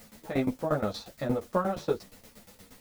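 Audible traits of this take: a quantiser's noise floor 10-bit, dither triangular; tremolo saw down 8.5 Hz, depth 90%; a shimmering, thickened sound

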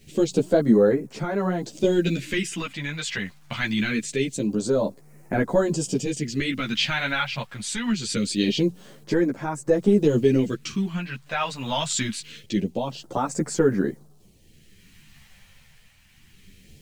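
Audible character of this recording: a quantiser's noise floor 10-bit, dither none; phasing stages 2, 0.24 Hz, lowest notch 330–3000 Hz; tremolo triangle 0.61 Hz, depth 50%; a shimmering, thickened sound

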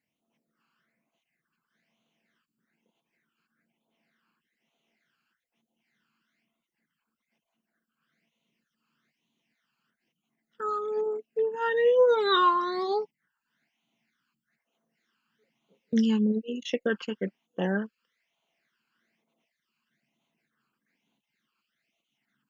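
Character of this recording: phasing stages 12, 1.1 Hz, lowest notch 620–1700 Hz

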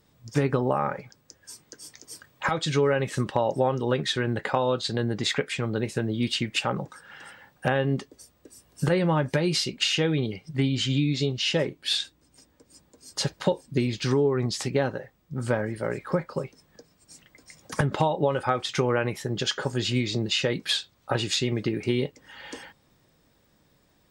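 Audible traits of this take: noise floor -65 dBFS; spectral tilt -5.0 dB/oct

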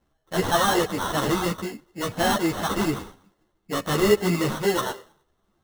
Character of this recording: aliases and images of a low sample rate 2400 Hz, jitter 0%; a shimmering, thickened sound

